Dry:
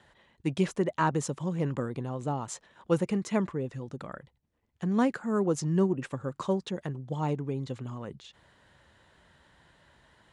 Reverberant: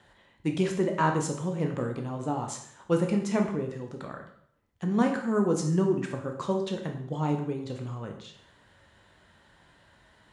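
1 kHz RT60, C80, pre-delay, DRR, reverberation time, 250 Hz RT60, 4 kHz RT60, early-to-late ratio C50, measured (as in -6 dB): 0.65 s, 10.0 dB, 6 ms, 2.5 dB, 0.65 s, 0.60 s, 0.60 s, 7.0 dB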